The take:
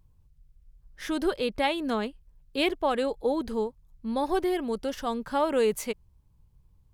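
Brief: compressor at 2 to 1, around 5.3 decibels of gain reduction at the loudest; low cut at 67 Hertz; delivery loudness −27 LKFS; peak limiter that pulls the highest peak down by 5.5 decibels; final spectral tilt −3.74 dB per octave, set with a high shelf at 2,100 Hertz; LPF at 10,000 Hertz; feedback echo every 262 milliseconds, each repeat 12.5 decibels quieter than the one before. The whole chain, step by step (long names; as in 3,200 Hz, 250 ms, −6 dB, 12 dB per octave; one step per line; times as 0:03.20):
high-pass filter 67 Hz
low-pass filter 10,000 Hz
high-shelf EQ 2,100 Hz −6 dB
downward compressor 2 to 1, threshold −31 dBFS
brickwall limiter −25.5 dBFS
repeating echo 262 ms, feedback 24%, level −12.5 dB
level +8 dB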